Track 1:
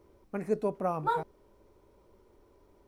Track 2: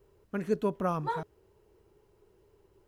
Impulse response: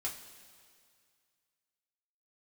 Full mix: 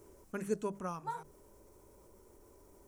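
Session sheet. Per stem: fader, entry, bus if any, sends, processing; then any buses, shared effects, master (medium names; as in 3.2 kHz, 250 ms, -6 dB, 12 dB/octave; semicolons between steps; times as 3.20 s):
-18.0 dB, 0.00 s, no send, level flattener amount 50%
+2.0 dB, 0.00 s, polarity flipped, no send, low-pass 8.1 kHz 12 dB/octave; hum notches 50/100/150/200 Hz; auto duck -18 dB, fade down 1.70 s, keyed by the first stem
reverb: none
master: resonant high shelf 5.4 kHz +11.5 dB, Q 1.5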